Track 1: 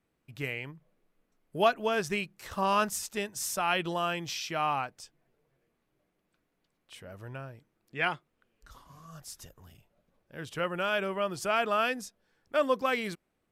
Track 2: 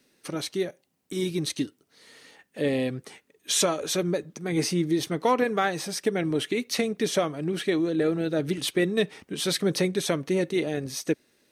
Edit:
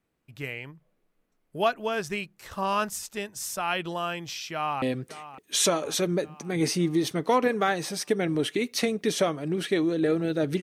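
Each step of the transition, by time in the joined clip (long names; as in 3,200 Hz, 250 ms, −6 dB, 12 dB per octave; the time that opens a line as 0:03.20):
track 1
0:04.53–0:04.82: delay throw 560 ms, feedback 60%, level −14 dB
0:04.82: continue with track 2 from 0:02.78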